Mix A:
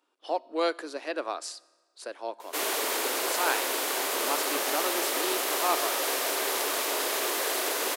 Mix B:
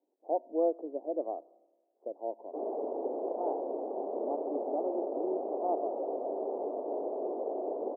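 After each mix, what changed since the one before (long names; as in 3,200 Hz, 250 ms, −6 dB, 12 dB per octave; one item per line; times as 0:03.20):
master: add Butterworth low-pass 760 Hz 48 dB per octave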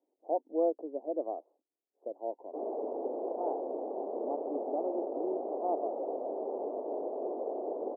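reverb: off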